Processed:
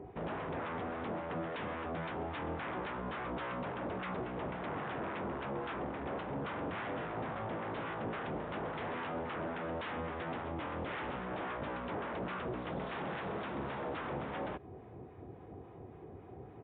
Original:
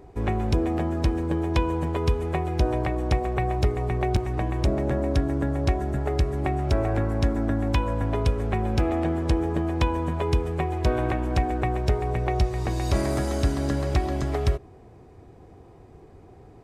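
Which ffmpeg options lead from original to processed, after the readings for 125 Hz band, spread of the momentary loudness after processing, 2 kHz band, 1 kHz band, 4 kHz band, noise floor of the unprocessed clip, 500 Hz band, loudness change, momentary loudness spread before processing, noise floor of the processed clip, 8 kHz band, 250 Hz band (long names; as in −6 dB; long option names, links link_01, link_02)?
−20.5 dB, 11 LU, −5.5 dB, −8.5 dB, −11.5 dB, −49 dBFS, −12.0 dB, −14.0 dB, 2 LU, −52 dBFS, below −35 dB, −14.0 dB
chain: -filter_complex "[0:a]aresample=16000,aeval=exprs='0.0355*(abs(mod(val(0)/0.0355+3,4)-2)-1)':channel_layout=same,aresample=44100,acrossover=split=920[link_01][link_02];[link_01]aeval=exprs='val(0)*(1-0.5/2+0.5/2*cos(2*PI*3.6*n/s))':channel_layout=same[link_03];[link_02]aeval=exprs='val(0)*(1-0.5/2-0.5/2*cos(2*PI*3.6*n/s))':channel_layout=same[link_04];[link_03][link_04]amix=inputs=2:normalize=0,highpass=97,asplit=2[link_05][link_06];[link_06]acompressor=threshold=-45dB:ratio=6,volume=1.5dB[link_07];[link_05][link_07]amix=inputs=2:normalize=0,aemphasis=mode=reproduction:type=75kf,volume=-4dB" -ar 8000 -c:a libmp3lame -b:a 64k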